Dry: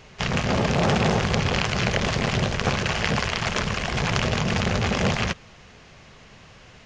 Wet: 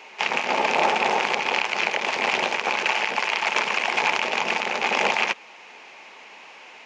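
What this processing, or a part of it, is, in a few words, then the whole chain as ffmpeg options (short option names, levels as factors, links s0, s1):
laptop speaker: -af "highpass=f=290:w=0.5412,highpass=f=290:w=1.3066,equalizer=f=880:t=o:w=0.42:g=12,equalizer=f=2400:t=o:w=0.57:g=11,alimiter=limit=0.473:level=0:latency=1:release=494"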